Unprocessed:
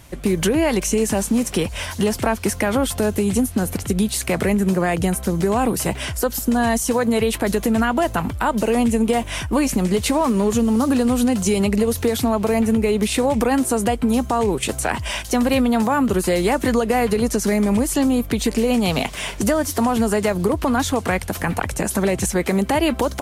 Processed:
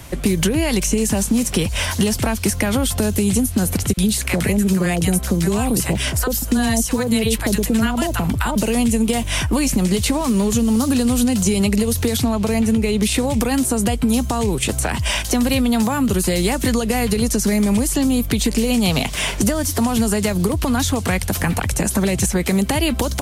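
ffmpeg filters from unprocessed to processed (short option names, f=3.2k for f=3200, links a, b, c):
-filter_complex "[0:a]asettb=1/sr,asplit=3[a][b][c];[a]atrim=end=3.934[d];[b]atrim=start=3.93:end=8.56,asetpts=PTS-STARTPTS,afade=t=in:d=0.004:c=qsin,afade=t=out:st=4.626:d=0.004:c=qsin,acrossover=split=890[e][f];[e]adelay=40[g];[g][f]amix=inputs=2:normalize=0,atrim=end_sample=204183[h];[c]atrim=start=8.556[i];[d][h]acrossfade=d=0.004:c1=hsin:c2=qsin[j];[j][i]acrossfade=d=0.004:c1=qsin:c2=hsin,asettb=1/sr,asplit=3[k][l][m];[k]atrim=end=12.174[n];[l]atrim=start=12.17:end=13.05,asetpts=PTS-STARTPTS,afade=t=in:d=0.004:c=qsin,afade=t=out:st=0.876:d=0.004:c=qsin,highshelf=f=12k:g=-11.5[o];[m]atrim=start=13.046[p];[n][o]acrossfade=d=0.004:c1=hsin:c2=qsin[q];[q][p]acrossfade=d=0.004:c1=qsin:c2=hsin,acrossover=split=200|2800[r][s][t];[r]acompressor=threshold=-26dB:ratio=4[u];[s]acompressor=threshold=-31dB:ratio=4[v];[t]acompressor=threshold=-29dB:ratio=4[w];[u][v][w]amix=inputs=3:normalize=0,volume=8dB"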